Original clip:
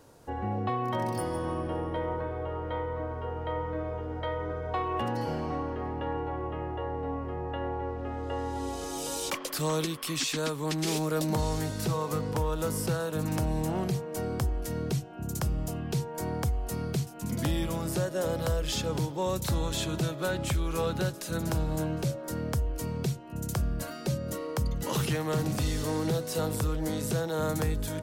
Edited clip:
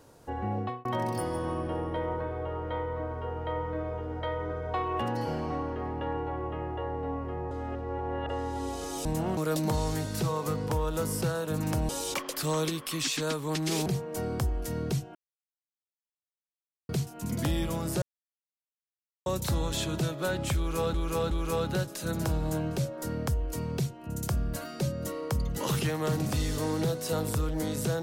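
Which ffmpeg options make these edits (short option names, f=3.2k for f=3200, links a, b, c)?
-filter_complex "[0:a]asplit=14[a][b][c][d][e][f][g][h][i][j][k][l][m][n];[a]atrim=end=0.85,asetpts=PTS-STARTPTS,afade=t=out:st=0.59:d=0.26[o];[b]atrim=start=0.85:end=7.512,asetpts=PTS-STARTPTS,afade=t=in:d=0.004:c=hsin[p];[c]atrim=start=7.508:end=8.292,asetpts=PTS-STARTPTS,areverse[q];[d]atrim=start=8.288:end=9.052[r];[e]atrim=start=13.538:end=13.862[s];[f]atrim=start=11.018:end=13.542[t];[g]atrim=start=9.048:end=11.022[u];[h]atrim=start=13.858:end=15.15,asetpts=PTS-STARTPTS,afade=t=out:st=1.288:d=0.004:c=hsin[v];[i]atrim=start=15.15:end=16.89,asetpts=PTS-STARTPTS,volume=0[w];[j]atrim=start=16.89:end=18.02,asetpts=PTS-STARTPTS,afade=t=in:d=0.004:c=hsin,afade=t=out:st=1.126:d=0.004:c=hsin[x];[k]atrim=start=18.02:end=19.26,asetpts=PTS-STARTPTS,volume=0[y];[l]atrim=start=19.26:end=20.942,asetpts=PTS-STARTPTS,afade=t=in:d=0.004:c=hsin[z];[m]atrim=start=20.568:end=20.942[aa];[n]atrim=start=20.568[ab];[o][p]concat=n=2:v=0:a=1[ac];[ac][q]acrossfade=d=0.004:c1=hsin:c2=hsin[ad];[ad][r]acrossfade=d=0.004:c1=hsin:c2=hsin[ae];[ae][s]acrossfade=d=0.004:c1=hsin:c2=hsin[af];[af][t]acrossfade=d=0.004:c1=hsin:c2=hsin[ag];[ag][u]acrossfade=d=0.004:c1=hsin:c2=hsin[ah];[v][w][x][y][z]concat=n=5:v=0:a=1[ai];[ah][ai]acrossfade=d=0.004:c1=hsin:c2=hsin[aj];[aj][aa]acrossfade=d=0.004:c1=hsin:c2=hsin[ak];[ak][ab]acrossfade=d=0.004:c1=hsin:c2=hsin"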